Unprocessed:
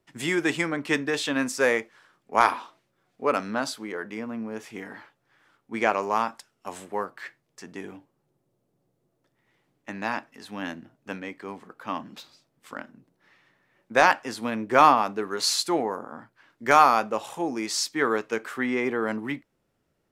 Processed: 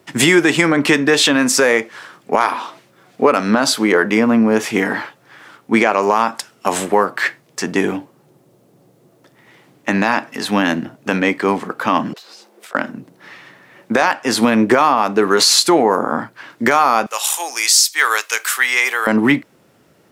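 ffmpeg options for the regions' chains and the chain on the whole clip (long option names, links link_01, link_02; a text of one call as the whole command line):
ffmpeg -i in.wav -filter_complex "[0:a]asettb=1/sr,asplit=3[link_01][link_02][link_03];[link_01]atrim=end=12.134[link_04];[link_02]atrim=start=12.13:end=12.75,asetpts=PTS-STARTPTS,afade=type=in:duration=0.004:curve=qsin,afade=type=out:start_time=0.616:duration=0.004:curve=qsin,afreqshift=210,acompressor=threshold=-57dB:ratio=12:attack=3.2:release=140:knee=1:detection=peak[link_05];[link_03]atrim=start=12.746[link_06];[link_04][link_05]acrossfade=duration=0.004:curve1=hsin:curve2=qsin[link_07];[link_07][link_06]acrossfade=duration=0.004:curve1=qsin:curve2=hsin,asettb=1/sr,asplit=3[link_08][link_09][link_10];[link_08]atrim=end=17.064[link_11];[link_09]atrim=start=17.06:end=19.07,asetpts=PTS-STARTPTS,afade=type=in:duration=0.004:curve=qsin,afade=type=out:start_time=2.006:duration=0.004:curve=qsin,highpass=610,aderivative,acontrast=56[link_12];[link_10]atrim=start=19.066[link_13];[link_11][link_12]acrossfade=duration=0.004:curve1=hsin:curve2=qsin[link_14];[link_14][link_13]acrossfade=duration=0.004:curve1=qsin:curve2=hsin,highpass=120,acompressor=threshold=-29dB:ratio=8,alimiter=level_in=22.5dB:limit=-1dB:release=50:level=0:latency=1,volume=-1dB" out.wav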